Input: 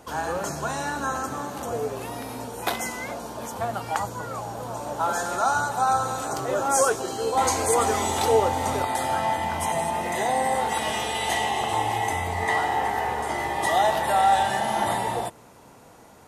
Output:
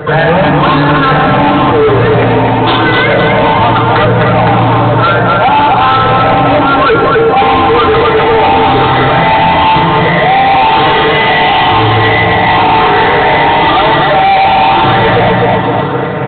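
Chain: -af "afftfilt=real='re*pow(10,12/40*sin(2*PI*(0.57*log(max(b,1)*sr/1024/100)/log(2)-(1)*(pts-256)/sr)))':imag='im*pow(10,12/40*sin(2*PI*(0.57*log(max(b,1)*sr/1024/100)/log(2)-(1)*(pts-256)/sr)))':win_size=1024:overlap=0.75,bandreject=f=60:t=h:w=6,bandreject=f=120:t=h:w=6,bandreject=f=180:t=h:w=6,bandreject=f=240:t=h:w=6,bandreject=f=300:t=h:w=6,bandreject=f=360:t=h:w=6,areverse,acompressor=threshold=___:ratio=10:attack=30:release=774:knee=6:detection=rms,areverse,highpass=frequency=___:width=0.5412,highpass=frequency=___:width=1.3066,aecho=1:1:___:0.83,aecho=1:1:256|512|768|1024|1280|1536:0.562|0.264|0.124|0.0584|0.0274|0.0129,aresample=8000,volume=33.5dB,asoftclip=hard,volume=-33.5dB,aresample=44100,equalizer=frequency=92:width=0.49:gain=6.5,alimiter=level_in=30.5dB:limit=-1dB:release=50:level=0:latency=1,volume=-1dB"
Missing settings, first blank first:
-30dB, 61, 61, 6.6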